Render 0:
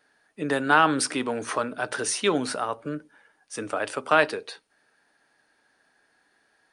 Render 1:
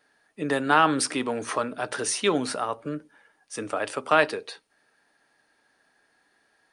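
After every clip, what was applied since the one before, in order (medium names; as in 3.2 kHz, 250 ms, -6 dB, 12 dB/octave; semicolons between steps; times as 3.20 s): band-stop 1.5 kHz, Q 19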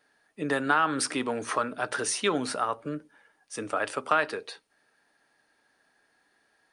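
dynamic bell 1.4 kHz, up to +6 dB, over -36 dBFS, Q 1.7; compression 3:1, threshold -19 dBFS, peak gain reduction 7.5 dB; trim -2 dB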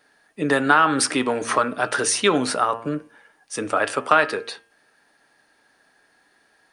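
de-hum 115 Hz, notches 29; trim +8 dB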